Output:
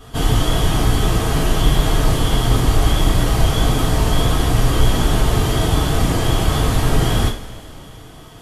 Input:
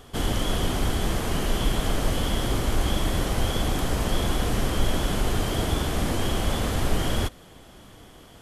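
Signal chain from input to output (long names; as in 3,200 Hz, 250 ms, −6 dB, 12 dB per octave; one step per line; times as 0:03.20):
coupled-rooms reverb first 0.32 s, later 2.7 s, from −21 dB, DRR −7.5 dB
level −1 dB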